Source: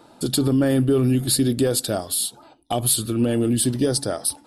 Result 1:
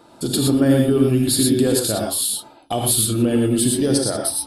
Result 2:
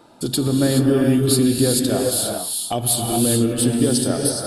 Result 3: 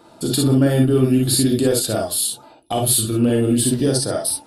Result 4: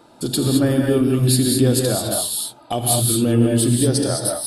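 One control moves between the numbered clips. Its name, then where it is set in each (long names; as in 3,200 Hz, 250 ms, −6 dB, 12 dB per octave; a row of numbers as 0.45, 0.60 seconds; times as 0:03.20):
reverb whose tail is shaped and stops, gate: 140, 450, 80, 240 milliseconds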